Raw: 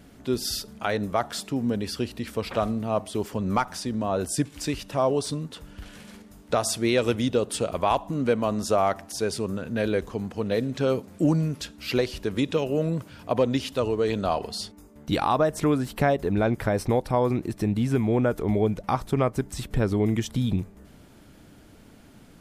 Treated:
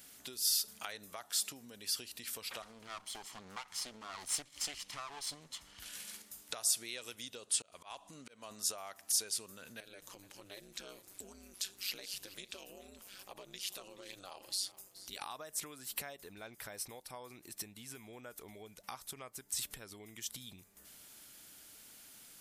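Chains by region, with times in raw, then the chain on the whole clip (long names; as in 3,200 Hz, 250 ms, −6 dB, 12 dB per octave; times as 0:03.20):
0:02.62–0:05.80: lower of the sound and its delayed copy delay 0.96 ms + high-frequency loss of the air 58 metres + highs frequency-modulated by the lows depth 0.22 ms
0:07.35–0:08.51: low-pass filter 10,000 Hz 24 dB per octave + volume swells 475 ms
0:09.80–0:15.21: downward compressor 2 to 1, threshold −37 dBFS + ring modulation 96 Hz + single-tap delay 426 ms −17.5 dB
whole clip: downward compressor 6 to 1, threshold −33 dBFS; first-order pre-emphasis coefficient 0.97; level +7.5 dB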